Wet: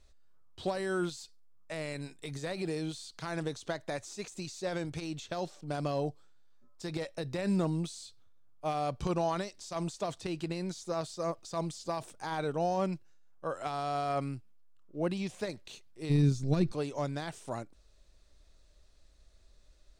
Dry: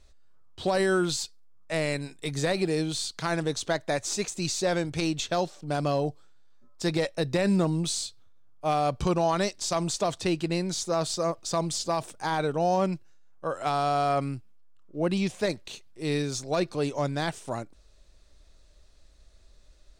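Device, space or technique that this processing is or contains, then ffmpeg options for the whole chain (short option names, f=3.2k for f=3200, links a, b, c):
de-esser from a sidechain: -filter_complex "[0:a]asplit=3[a][b][c];[a]afade=t=out:st=16.09:d=0.02[d];[b]asubboost=boost=10:cutoff=210,afade=t=in:st=16.09:d=0.02,afade=t=out:st=16.71:d=0.02[e];[c]afade=t=in:st=16.71:d=0.02[f];[d][e][f]amix=inputs=3:normalize=0,asplit=2[g][h];[h]highpass=4.4k,apad=whole_len=881993[i];[g][i]sidechaincompress=threshold=-43dB:ratio=3:attack=2.3:release=61,volume=-5dB"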